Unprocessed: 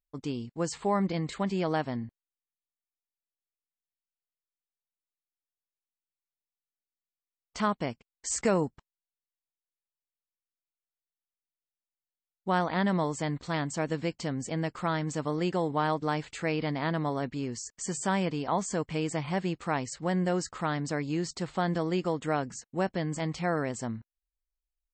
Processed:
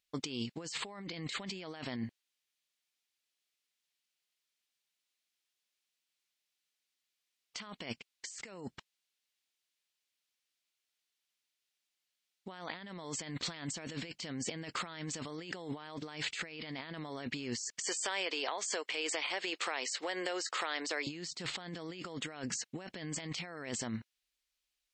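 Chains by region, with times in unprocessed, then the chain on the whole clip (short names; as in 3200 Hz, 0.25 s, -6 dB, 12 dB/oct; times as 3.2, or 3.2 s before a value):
17.82–21.07 HPF 380 Hz 24 dB/oct + compressor 12:1, threshold -37 dBFS
whole clip: weighting filter D; negative-ratio compressor -39 dBFS, ratio -1; gain -2.5 dB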